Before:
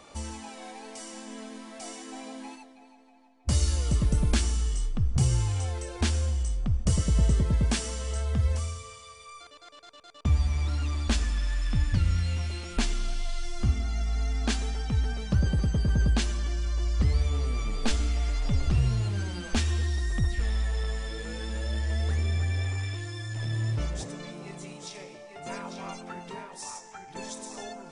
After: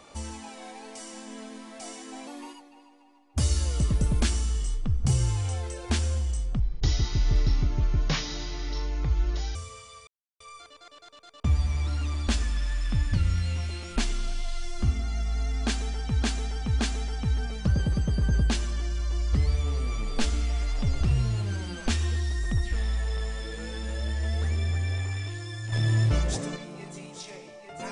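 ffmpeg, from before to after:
-filter_complex "[0:a]asplit=10[a][b][c][d][e][f][g][h][i][j];[a]atrim=end=2.274[k];[b]atrim=start=2.27:end=3.51,asetpts=PTS-STARTPTS,asetrate=48510,aresample=44100[l];[c]atrim=start=3.506:end=6.714[m];[d]atrim=start=6.71:end=8.69,asetpts=PTS-STARTPTS,asetrate=29547,aresample=44100,atrim=end_sample=130325,asetpts=PTS-STARTPTS[n];[e]atrim=start=8.686:end=9.21,asetpts=PTS-STARTPTS,afade=t=out:st=0.52:d=0.004:c=hsin,apad=pad_dur=0.33[o];[f]atrim=start=9.21:end=15.032,asetpts=PTS-STARTPTS,afade=t=in:d=0.004:c=hsin[p];[g]atrim=start=14.458:end=15.032[q];[h]atrim=start=14.458:end=23.392[r];[i]atrim=start=23.388:end=24.232,asetpts=PTS-STARTPTS,volume=6dB[s];[j]atrim=start=24.228[t];[k][l]acrossfade=d=0.004:c1=hsin:c2=hsin[u];[u][m]acrossfade=d=0.004:c1=hsin:c2=hsin[v];[v][n]acrossfade=d=0.004:c1=hsin:c2=hsin[w];[o][p]concat=n=2:v=0:a=1[x];[w][x]acrossfade=d=0.004:c1=hsin:c2=hsin[y];[y][q]acrossfade=d=0.004:c1=hsin:c2=hsin[z];[z][r]acrossfade=d=0.004:c1=hsin:c2=hsin[aa];[aa][s]acrossfade=d=0.004:c1=hsin:c2=hsin[ab];[ab][t]acrossfade=d=0.004:c1=hsin:c2=hsin"

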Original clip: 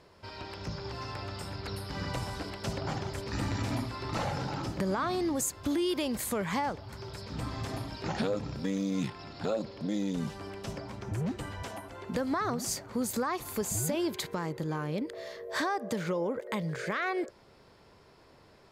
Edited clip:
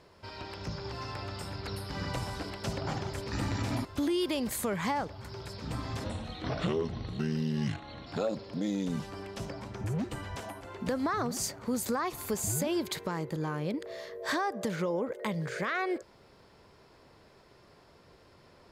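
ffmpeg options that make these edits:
-filter_complex "[0:a]asplit=4[a][b][c][d];[a]atrim=end=3.852[e];[b]atrim=start=5.528:end=7.724[f];[c]atrim=start=7.72:end=9.34,asetpts=PTS-STARTPTS,asetrate=35280,aresample=44100,atrim=end_sample=89302,asetpts=PTS-STARTPTS[g];[d]atrim=start=9.336[h];[e][f]acrossfade=d=0.004:c1=hsin:c2=hsin[i];[i][g]acrossfade=d=0.004:c1=hsin:c2=hsin[j];[j][h]acrossfade=d=0.004:c1=hsin:c2=hsin"

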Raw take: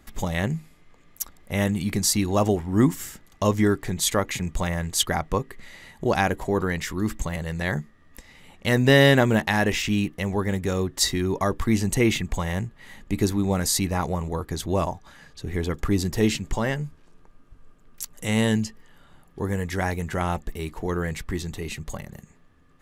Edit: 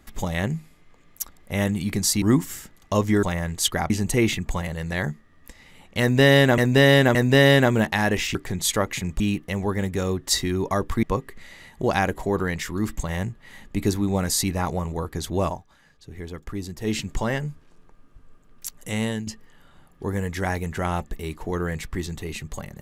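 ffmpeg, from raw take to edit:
-filter_complex "[0:a]asplit=14[a][b][c][d][e][f][g][h][i][j][k][l][m][n];[a]atrim=end=2.222[o];[b]atrim=start=2.718:end=3.732[p];[c]atrim=start=4.578:end=5.252[q];[d]atrim=start=11.728:end=12.452[r];[e]atrim=start=7.308:end=9.272[s];[f]atrim=start=8.698:end=9.272[t];[g]atrim=start=8.698:end=9.902[u];[h]atrim=start=3.728:end=4.582[v];[i]atrim=start=9.898:end=11.732[w];[j]atrim=start=5.248:end=7.312[x];[k]atrim=start=12.448:end=15.02,asetpts=PTS-STARTPTS,afade=t=out:st=2.372:d=0.2:silence=0.354813[y];[l]atrim=start=15.02:end=16.18,asetpts=PTS-STARTPTS,volume=-9dB[z];[m]atrim=start=16.18:end=18.63,asetpts=PTS-STARTPTS,afade=t=in:d=0.2:silence=0.354813,afade=t=out:st=1.96:d=0.49:silence=0.281838[aa];[n]atrim=start=18.63,asetpts=PTS-STARTPTS,afade=t=in:d=0.004:c=hsin:silence=0.281838[ab];[o][p]acrossfade=d=0.004:c1=hsin:c2=hsin[ac];[ac][q]acrossfade=d=0.004:c1=hsin:c2=hsin[ad];[ad][r]acrossfade=d=0.004:c1=hsin:c2=hsin[ae];[ae][s]acrossfade=d=0.004:c1=hsin:c2=hsin[af];[af][t]acrossfade=d=0.004:c1=hsin:c2=hsin[ag];[ag][u]acrossfade=d=0.004:c1=hsin:c2=hsin[ah];[ah][v]acrossfade=d=0.004:c1=hsin:c2=hsin[ai];[ai][w]acrossfade=d=0.004:c1=hsin:c2=hsin[aj];[aj][x]acrossfade=d=0.004:c1=hsin:c2=hsin[ak];[y][z][aa][ab]concat=n=4:v=0:a=1[al];[ak][al]acrossfade=d=0.004:c1=hsin:c2=hsin"

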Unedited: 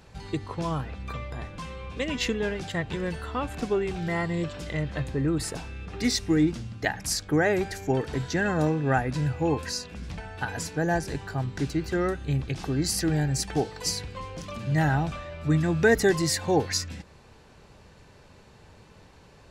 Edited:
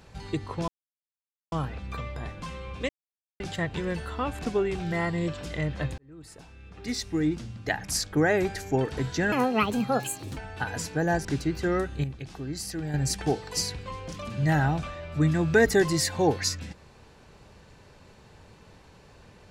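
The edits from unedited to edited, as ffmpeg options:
-filter_complex "[0:a]asplit=10[a][b][c][d][e][f][g][h][i][j];[a]atrim=end=0.68,asetpts=PTS-STARTPTS,afade=t=out:st=0.676:d=0.004:c=hsin,apad=pad_dur=0.84[k];[b]atrim=start=0.68:end=2.05,asetpts=PTS-STARTPTS,afade=t=in:d=0.004:c=hsin,afade=t=out:st=1.366:d=0.004:c=hsin[l];[c]atrim=start=2.05:end=2.56,asetpts=PTS-STARTPTS,volume=0[m];[d]atrim=start=2.56:end=5.14,asetpts=PTS-STARTPTS,afade=t=in:d=0.004:c=hsin,afade=t=out:st=2.576:d=0.004:c=hsin[n];[e]atrim=start=5.14:end=8.484,asetpts=PTS-STARTPTS,afade=t=in:d=1.98[o];[f]atrim=start=8.48:end=10.18,asetpts=PTS-STARTPTS,asetrate=71442,aresample=44100[p];[g]atrim=start=10.176:end=11.062[q];[h]atrim=start=11.538:end=12.332[r];[i]atrim=start=12.328:end=13.232,asetpts=PTS-STARTPTS,volume=-8dB[s];[j]atrim=start=13.228[t];[k][l][m][n][o]concat=n=5:v=0:a=1[u];[u][p]acrossfade=d=0.004:c1=hsin:c2=hsin[v];[v][q]acrossfade=d=0.004:c1=hsin:c2=hsin[w];[w][r]acrossfade=d=0.004:c1=hsin:c2=hsin[x];[x][s]acrossfade=d=0.004:c1=hsin:c2=hsin[y];[y][t]acrossfade=d=0.004:c1=hsin:c2=hsin"

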